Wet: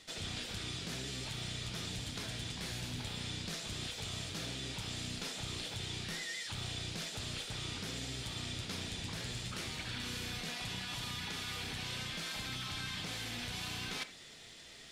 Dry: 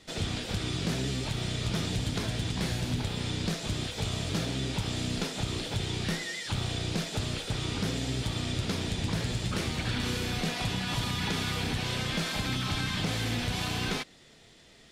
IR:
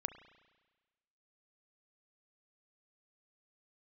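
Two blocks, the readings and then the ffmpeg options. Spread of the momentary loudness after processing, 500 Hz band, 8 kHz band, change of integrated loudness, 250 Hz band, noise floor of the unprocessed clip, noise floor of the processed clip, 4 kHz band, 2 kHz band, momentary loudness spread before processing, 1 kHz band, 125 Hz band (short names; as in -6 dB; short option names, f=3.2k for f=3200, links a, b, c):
1 LU, -12.0 dB, -5.0 dB, -8.0 dB, -13.0 dB, -56 dBFS, -53 dBFS, -5.5 dB, -7.0 dB, 3 LU, -10.0 dB, -12.5 dB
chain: -filter_complex "[0:a]tiltshelf=f=1.1k:g=-4.5,areverse,acompressor=threshold=-40dB:ratio=6,areverse[a];[1:a]atrim=start_sample=2205,atrim=end_sample=3969[b];[a][b]afir=irnorm=-1:irlink=0,volume=2.5dB"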